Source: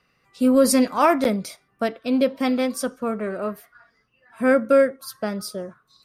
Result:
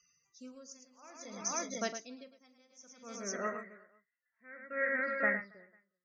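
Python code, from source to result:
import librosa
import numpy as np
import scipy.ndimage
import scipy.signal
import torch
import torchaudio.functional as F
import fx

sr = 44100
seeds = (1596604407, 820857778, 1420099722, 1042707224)

y = fx.dynamic_eq(x, sr, hz=1700.0, q=0.7, threshold_db=-31.0, ratio=4.0, max_db=4)
y = fx.ladder_lowpass(y, sr, hz=fx.steps((0.0, 6400.0), (3.33, 2000.0)), resonance_pct=90)
y = fx.high_shelf(y, sr, hz=3100.0, db=10.5)
y = fx.spec_topn(y, sr, count=64)
y = fx.echo_multitap(y, sr, ms=(44, 108, 276, 363, 379, 497), db=(-13.5, -6.5, -19.0, -16.5, -19.5, -10.5))
y = y * 10.0 ** (-34 * (0.5 - 0.5 * np.cos(2.0 * np.pi * 0.58 * np.arange(len(y)) / sr)) / 20.0)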